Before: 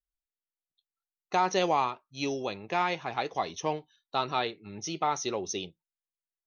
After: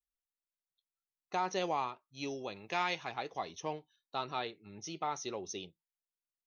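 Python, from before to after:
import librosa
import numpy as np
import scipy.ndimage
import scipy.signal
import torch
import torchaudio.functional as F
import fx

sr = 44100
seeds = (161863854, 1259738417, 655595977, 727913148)

y = fx.high_shelf(x, sr, hz=2000.0, db=10.0, at=(2.56, 3.12))
y = F.gain(torch.from_numpy(y), -8.0).numpy()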